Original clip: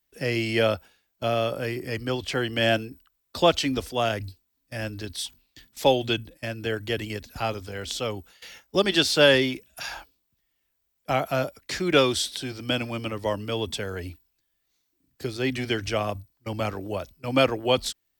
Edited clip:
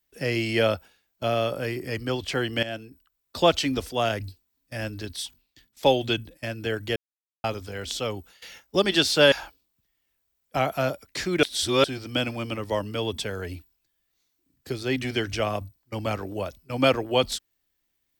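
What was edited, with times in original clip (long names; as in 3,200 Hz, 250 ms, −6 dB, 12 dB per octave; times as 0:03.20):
0:02.63–0:03.47: fade in, from −15 dB
0:05.08–0:05.83: fade out linear, to −13 dB
0:06.96–0:07.44: silence
0:09.32–0:09.86: remove
0:11.97–0:12.38: reverse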